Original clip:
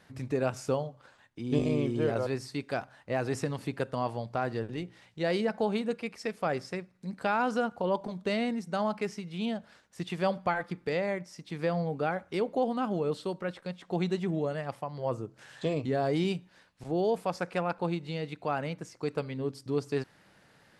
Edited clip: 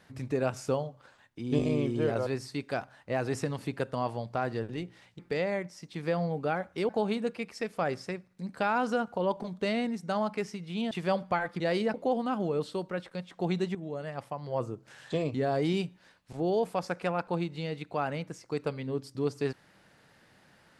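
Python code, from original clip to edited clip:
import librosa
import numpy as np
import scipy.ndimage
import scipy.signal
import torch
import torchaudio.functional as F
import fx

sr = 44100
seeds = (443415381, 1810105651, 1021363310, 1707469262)

y = fx.edit(x, sr, fx.swap(start_s=5.19, length_s=0.34, other_s=10.75, other_length_s=1.7),
    fx.cut(start_s=9.55, length_s=0.51),
    fx.fade_in_from(start_s=14.26, length_s=0.8, curve='qsin', floor_db=-12.5), tone=tone)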